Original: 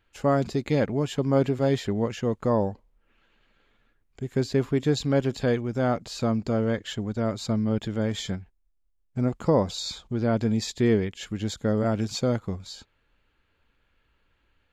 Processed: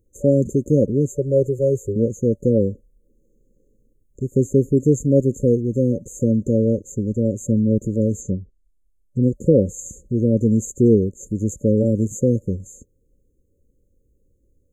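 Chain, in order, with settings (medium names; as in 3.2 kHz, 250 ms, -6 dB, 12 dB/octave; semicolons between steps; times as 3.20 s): 1.12–1.96 s: static phaser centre 870 Hz, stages 6; 8.20–9.23 s: low-pass that closes with the level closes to 1.5 kHz, closed at -25.5 dBFS; FFT band-reject 580–6200 Hz; trim +7.5 dB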